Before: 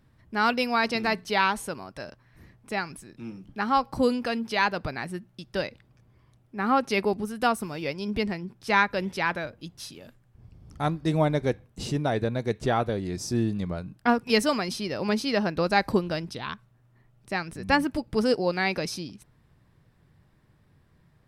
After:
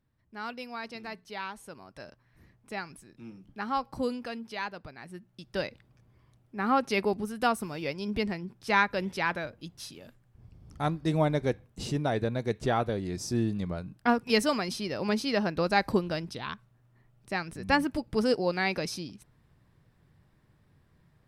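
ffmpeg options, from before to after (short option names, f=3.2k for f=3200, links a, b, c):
-af "volume=5dB,afade=t=in:st=1.59:d=0.42:silence=0.421697,afade=t=out:st=3.91:d=1.05:silence=0.421697,afade=t=in:st=4.96:d=0.67:silence=0.251189"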